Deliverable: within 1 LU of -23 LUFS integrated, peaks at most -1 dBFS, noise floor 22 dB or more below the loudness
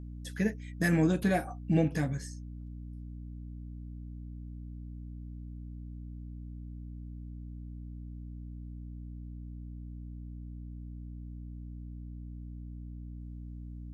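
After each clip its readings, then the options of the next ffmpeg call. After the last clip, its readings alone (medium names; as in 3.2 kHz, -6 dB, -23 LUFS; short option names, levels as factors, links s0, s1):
hum 60 Hz; highest harmonic 300 Hz; hum level -40 dBFS; loudness -37.5 LUFS; peak level -15.0 dBFS; loudness target -23.0 LUFS
-> -af "bandreject=f=60:t=h:w=6,bandreject=f=120:t=h:w=6,bandreject=f=180:t=h:w=6,bandreject=f=240:t=h:w=6,bandreject=f=300:t=h:w=6"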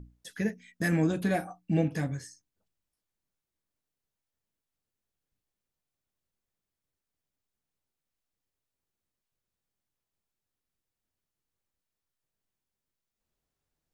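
hum not found; loudness -30.5 LUFS; peak level -14.0 dBFS; loudness target -23.0 LUFS
-> -af "volume=2.37"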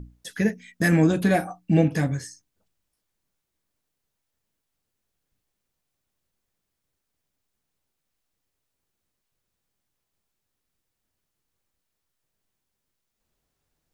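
loudness -23.0 LUFS; peak level -6.5 dBFS; noise floor -81 dBFS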